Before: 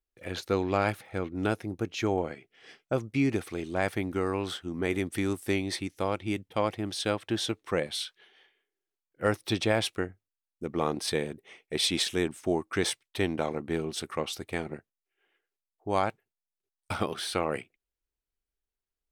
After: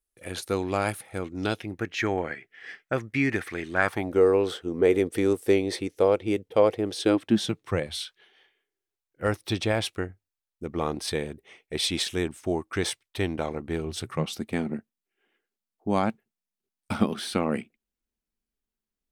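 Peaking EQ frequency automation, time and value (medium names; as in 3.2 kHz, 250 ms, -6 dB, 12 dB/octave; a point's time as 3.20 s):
peaking EQ +15 dB 0.7 oct
1.20 s 9.9 kHz
1.78 s 1.8 kHz
3.73 s 1.8 kHz
4.19 s 460 Hz
6.93 s 460 Hz
8.04 s 63 Hz
13.79 s 63 Hz
14.37 s 220 Hz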